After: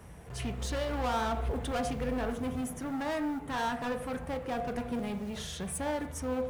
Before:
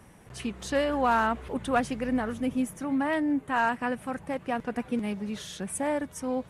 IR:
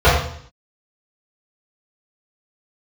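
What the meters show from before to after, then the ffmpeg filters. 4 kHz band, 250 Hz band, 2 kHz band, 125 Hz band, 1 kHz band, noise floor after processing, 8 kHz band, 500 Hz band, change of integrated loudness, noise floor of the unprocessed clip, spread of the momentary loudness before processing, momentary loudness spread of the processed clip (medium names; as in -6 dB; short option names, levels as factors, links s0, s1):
-0.5 dB, -6.0 dB, -7.5 dB, +4.0 dB, -6.0 dB, -45 dBFS, -1.5 dB, -3.5 dB, -5.0 dB, -52 dBFS, 9 LU, 5 LU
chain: -filter_complex "[0:a]asoftclip=type=tanh:threshold=0.0266,acrusher=bits=7:mode=log:mix=0:aa=0.000001,asplit=2[s0][s1];[1:a]atrim=start_sample=2205[s2];[s1][s2]afir=irnorm=-1:irlink=0,volume=0.0251[s3];[s0][s3]amix=inputs=2:normalize=0"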